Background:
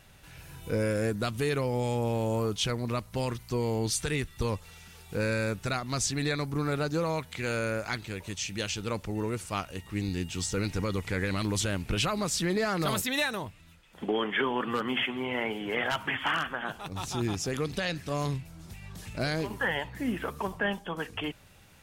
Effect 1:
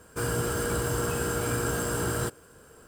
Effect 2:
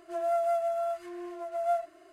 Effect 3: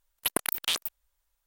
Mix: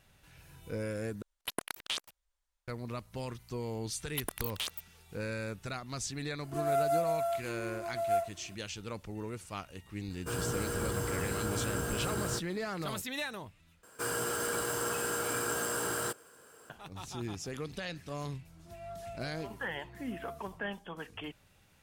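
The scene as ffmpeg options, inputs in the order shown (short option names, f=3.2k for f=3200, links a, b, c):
-filter_complex "[3:a]asplit=2[a][b];[2:a]asplit=2[c][d];[1:a]asplit=2[e][f];[0:a]volume=-8.5dB[g];[a]lowpass=8.7k[h];[b]asoftclip=type=hard:threshold=-14.5dB[i];[c]aemphasis=mode=production:type=50fm[j];[f]highpass=f=570:p=1[k];[g]asplit=3[l][m][n];[l]atrim=end=1.224[o];[h]atrim=end=1.46,asetpts=PTS-STARTPTS,volume=-7dB[p];[m]atrim=start=2.676:end=13.834[q];[k]atrim=end=2.87,asetpts=PTS-STARTPTS,volume=-1.5dB[r];[n]atrim=start=16.696[s];[i]atrim=end=1.46,asetpts=PTS-STARTPTS,volume=-8.5dB,afade=t=in:d=0.004:c=hsin,afade=t=out:st=1.456:d=0.004:c=hsin,adelay=3920[t];[j]atrim=end=2.12,asetpts=PTS-STARTPTS,volume=-1.5dB,afade=t=in:d=0.004:c=hsin,afade=t=out:st=2.116:d=0.004:c=hsin,adelay=6430[u];[e]atrim=end=2.87,asetpts=PTS-STARTPTS,volume=-6.5dB,afade=t=in:d=0.004:c=hsin,afade=t=out:st=2.866:d=0.004:c=hsin,adelay=445410S[v];[d]atrim=end=2.12,asetpts=PTS-STARTPTS,volume=-17.5dB,afade=t=in:d=0.004:c=hsin,afade=t=out:st=2.116:d=0.004:c=hsin,adelay=18570[w];[o][p]acrossfade=d=0.004:c1=hsin:c2=hsin[x];[x][q]acrossfade=d=0.004:c1=hsin:c2=hsin[y];[y][r]acrossfade=d=0.004:c1=hsin:c2=hsin[z];[z][s]acrossfade=d=0.004:c1=hsin:c2=hsin[aa];[aa][t][u][v][w]amix=inputs=5:normalize=0"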